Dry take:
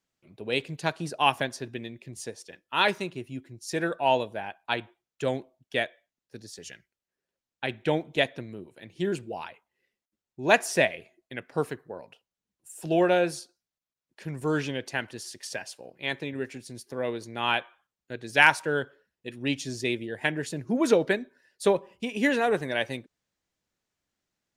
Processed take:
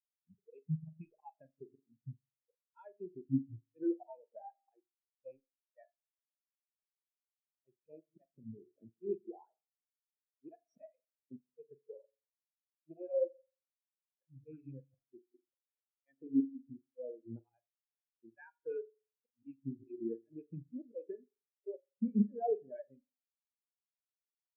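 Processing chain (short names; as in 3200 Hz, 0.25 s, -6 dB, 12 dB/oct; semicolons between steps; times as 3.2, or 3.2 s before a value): rattling part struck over -30 dBFS, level -15 dBFS; low-pass opened by the level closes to 920 Hz, open at -22.5 dBFS; high shelf 3100 Hz -8.5 dB; auto swell 0.63 s; compressor 8:1, threshold -47 dBFS, peak gain reduction 21.5 dB; sample gate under -57.5 dBFS; on a send: tapped delay 44/74/77/169 ms -12/-17.5/-16.5/-19 dB; on the sum: spectral noise reduction 6 dB; spring tank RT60 1.5 s, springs 44 ms, DRR 7.5 dB; spectral expander 4:1; gain +14 dB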